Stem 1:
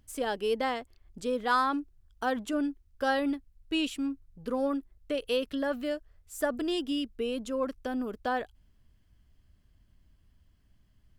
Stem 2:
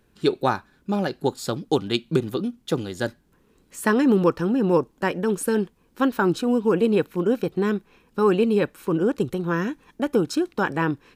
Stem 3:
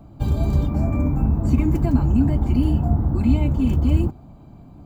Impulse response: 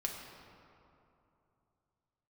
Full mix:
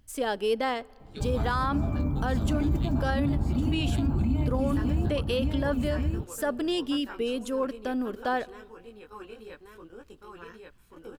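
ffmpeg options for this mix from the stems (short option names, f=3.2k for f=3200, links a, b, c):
-filter_complex "[0:a]volume=2dB,asplit=3[a][b][c];[b]volume=-22.5dB[d];[1:a]highpass=f=980:p=1,flanger=delay=17:depth=2.8:speed=2.2,adelay=900,volume=-14.5dB,asplit=3[e][f][g];[f]volume=-21.5dB[h];[g]volume=-3dB[i];[2:a]adelay=1000,volume=-7.5dB,asplit=2[j][k];[k]volume=-3.5dB[l];[c]apad=whole_len=531524[m];[e][m]sidechaingate=range=-33dB:threshold=-60dB:ratio=16:detection=peak[n];[3:a]atrim=start_sample=2205[o];[d][h]amix=inputs=2:normalize=0[p];[p][o]afir=irnorm=-1:irlink=0[q];[i][l]amix=inputs=2:normalize=0,aecho=0:1:1135:1[r];[a][n][j][q][r]amix=inputs=5:normalize=0,alimiter=limit=-18dB:level=0:latency=1:release=39"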